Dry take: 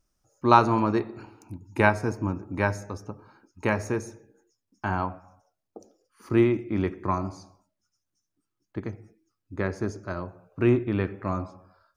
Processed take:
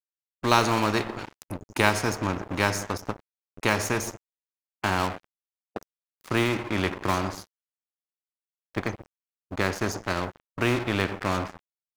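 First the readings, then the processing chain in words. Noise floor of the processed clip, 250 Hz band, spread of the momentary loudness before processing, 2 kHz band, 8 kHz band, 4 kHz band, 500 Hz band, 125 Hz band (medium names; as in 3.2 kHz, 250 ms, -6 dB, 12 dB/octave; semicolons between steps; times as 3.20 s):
under -85 dBFS, -2.5 dB, 19 LU, +3.5 dB, +13.0 dB, +12.5 dB, -1.5 dB, -1.5 dB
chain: crossover distortion -44.5 dBFS; spectrum-flattening compressor 2:1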